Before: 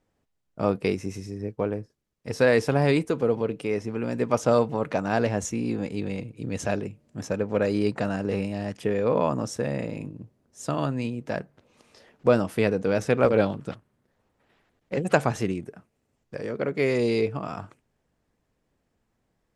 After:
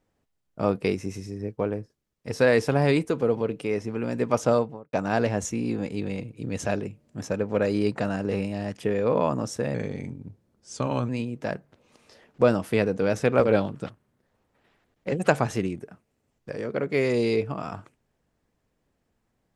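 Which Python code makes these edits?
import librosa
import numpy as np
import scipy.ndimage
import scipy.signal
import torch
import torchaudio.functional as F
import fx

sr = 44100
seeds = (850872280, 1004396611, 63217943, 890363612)

y = fx.studio_fade_out(x, sr, start_s=4.44, length_s=0.49)
y = fx.edit(y, sr, fx.speed_span(start_s=9.74, length_s=1.2, speed=0.89), tone=tone)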